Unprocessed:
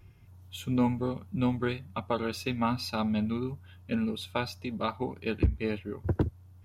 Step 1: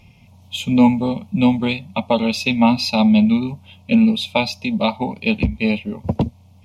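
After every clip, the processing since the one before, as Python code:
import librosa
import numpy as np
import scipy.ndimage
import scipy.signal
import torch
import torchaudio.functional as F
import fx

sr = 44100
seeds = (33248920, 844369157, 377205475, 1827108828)

y = fx.curve_eq(x, sr, hz=(100.0, 230.0, 340.0, 560.0, 930.0, 1600.0, 2300.0, 6200.0, 13000.0), db=(0, 14, -5, 11, 10, -12, 14, 10, 1))
y = y * 10.0 ** (3.5 / 20.0)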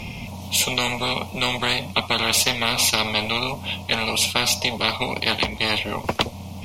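y = fx.spectral_comp(x, sr, ratio=10.0)
y = y * 10.0 ** (-1.0 / 20.0)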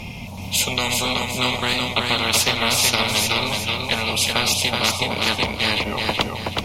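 y = fx.echo_feedback(x, sr, ms=375, feedback_pct=40, wet_db=-3.5)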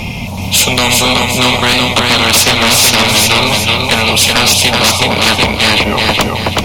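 y = fx.fold_sine(x, sr, drive_db=10, ceiling_db=-2.5)
y = y * 10.0 ** (-1.0 / 20.0)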